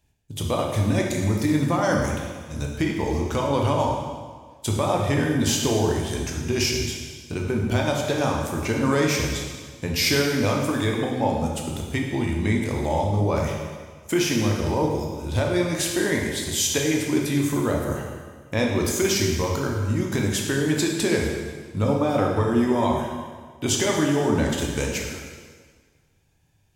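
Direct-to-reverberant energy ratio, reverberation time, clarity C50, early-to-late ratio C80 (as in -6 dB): -0.5 dB, 1.6 s, 2.0 dB, 4.0 dB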